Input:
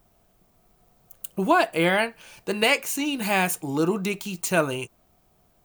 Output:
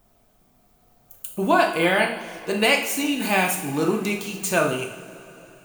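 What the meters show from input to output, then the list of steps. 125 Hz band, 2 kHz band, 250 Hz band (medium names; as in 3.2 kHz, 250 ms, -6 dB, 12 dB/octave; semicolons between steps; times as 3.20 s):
0.0 dB, +2.5 dB, +1.5 dB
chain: two-slope reverb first 0.6 s, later 3.8 s, from -18 dB, DRR 1.5 dB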